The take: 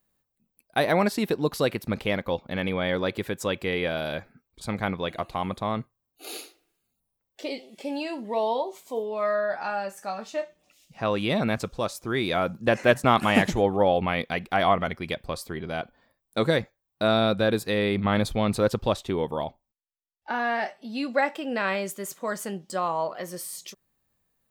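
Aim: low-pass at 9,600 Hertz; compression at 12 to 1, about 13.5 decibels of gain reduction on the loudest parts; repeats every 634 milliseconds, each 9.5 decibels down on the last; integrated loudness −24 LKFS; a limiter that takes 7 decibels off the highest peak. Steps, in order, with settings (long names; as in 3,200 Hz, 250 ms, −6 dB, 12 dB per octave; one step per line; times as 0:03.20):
low-pass filter 9,600 Hz
downward compressor 12 to 1, threshold −28 dBFS
brickwall limiter −22.5 dBFS
repeating echo 634 ms, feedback 33%, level −9.5 dB
level +11 dB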